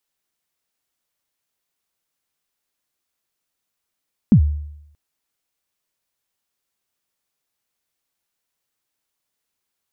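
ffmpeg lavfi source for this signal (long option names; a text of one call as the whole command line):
ffmpeg -f lavfi -i "aevalsrc='0.562*pow(10,-3*t/0.8)*sin(2*PI*(250*0.085/log(74/250)*(exp(log(74/250)*min(t,0.085)/0.085)-1)+74*max(t-0.085,0)))':duration=0.63:sample_rate=44100" out.wav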